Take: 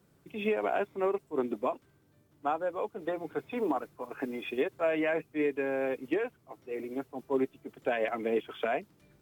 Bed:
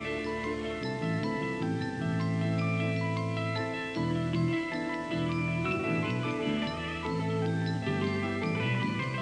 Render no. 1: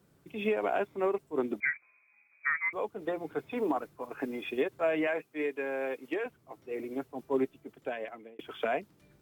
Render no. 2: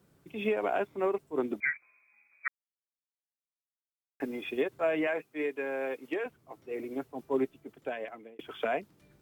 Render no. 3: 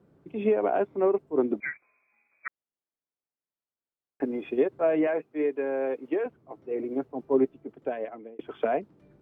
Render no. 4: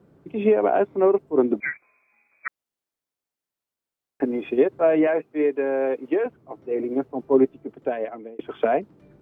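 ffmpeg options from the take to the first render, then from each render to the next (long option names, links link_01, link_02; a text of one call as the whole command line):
ffmpeg -i in.wav -filter_complex "[0:a]asettb=1/sr,asplit=3[link_01][link_02][link_03];[link_01]atrim=end=1.604[link_04];[link_02]atrim=start=1.6:end=2.73,asetpts=PTS-STARTPTS,afade=type=in:duration=0.004:curve=qsin,afade=type=out:start_time=1.126:duration=0.004:curve=qsin,lowpass=frequency=2200:width_type=q:width=0.5098,lowpass=frequency=2200:width_type=q:width=0.6013,lowpass=frequency=2200:width_type=q:width=0.9,lowpass=frequency=2200:width_type=q:width=2.563,afreqshift=-2600[link_05];[link_03]atrim=start=2.726[link_06];[link_04][link_05]acrossfade=duration=0.004:curve1=hsin:curve2=qsin[link_07];[link_07][link_06]acrossfade=duration=0.004:curve1=qsin:curve2=hsin,asettb=1/sr,asplit=3[link_08][link_09][link_10];[link_08]atrim=end=5.074[link_11];[link_09]atrim=start=5.07:end=6.26,asetpts=PTS-STARTPTS,afade=type=in:duration=0.004:curve=qsin,afade=type=out:start_time=1.186:duration=0.004:curve=qsin,highpass=frequency=460:poles=1[link_12];[link_10]atrim=start=6.256[link_13];[link_11][link_12]acrossfade=duration=0.004:curve1=hsin:curve2=qsin[link_14];[link_14][link_13]acrossfade=duration=0.004:curve1=qsin:curve2=hsin,asplit=2[link_15][link_16];[link_15]atrim=end=8.39,asetpts=PTS-STARTPTS,afade=type=out:start_time=7.43:duration=0.96[link_17];[link_16]atrim=start=8.39,asetpts=PTS-STARTPTS,afade=type=in:duration=0.004:curve=hsin[link_18];[link_17][link_18]concat=n=2:v=0:a=1" out.wav
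ffmpeg -i in.wav -filter_complex "[0:a]asplit=3[link_01][link_02][link_03];[link_01]atrim=end=2.48,asetpts=PTS-STARTPTS,afade=type=out:start_time=2.476:duration=0.004:curve=hsin[link_04];[link_02]atrim=start=2.48:end=4.2,asetpts=PTS-STARTPTS,volume=0[link_05];[link_03]atrim=start=4.2,asetpts=PTS-STARTPTS,afade=type=in:duration=0.004:curve=hsin[link_06];[link_04][link_05][link_06]concat=n=3:v=0:a=1" out.wav
ffmpeg -i in.wav -af "lowpass=frequency=1300:poles=1,equalizer=frequency=370:width=0.4:gain=7" out.wav
ffmpeg -i in.wav -af "volume=5.5dB" out.wav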